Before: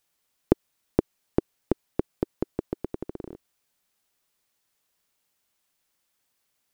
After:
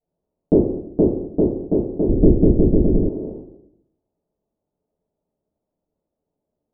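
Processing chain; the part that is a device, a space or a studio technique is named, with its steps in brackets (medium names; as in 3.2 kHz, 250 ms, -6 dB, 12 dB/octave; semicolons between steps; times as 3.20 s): next room (low-pass 650 Hz 24 dB/octave; reverberation RT60 0.75 s, pre-delay 3 ms, DRR -13.5 dB); 2.09–3.09 s: tilt EQ -4.5 dB/octave; trim -4.5 dB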